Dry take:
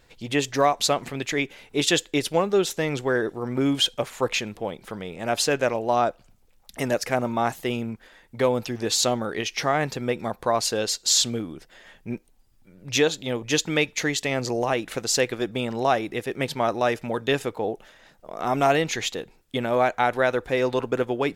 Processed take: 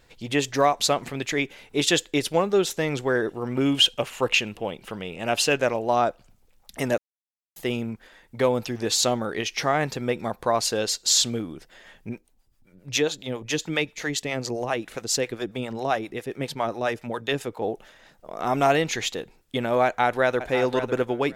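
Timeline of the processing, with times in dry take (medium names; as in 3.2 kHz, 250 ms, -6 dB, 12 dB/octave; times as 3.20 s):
3.28–5.57 s: peaking EQ 2.8 kHz +12 dB 0.22 oct
6.98–7.56 s: mute
12.09–17.62 s: harmonic tremolo 7.4 Hz, crossover 510 Hz
19.85–20.45 s: echo throw 550 ms, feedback 15%, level -10.5 dB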